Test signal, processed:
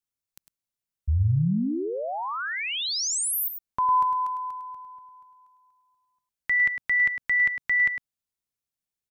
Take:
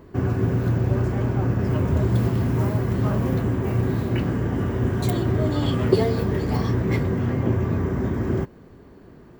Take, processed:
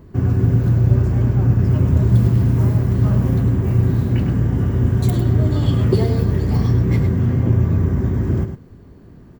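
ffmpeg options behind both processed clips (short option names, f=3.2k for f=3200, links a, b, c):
-filter_complex "[0:a]bass=f=250:g=10,treble=f=4k:g=4,asplit=2[a][b];[b]aecho=0:1:104:0.376[c];[a][c]amix=inputs=2:normalize=0,volume=-3dB"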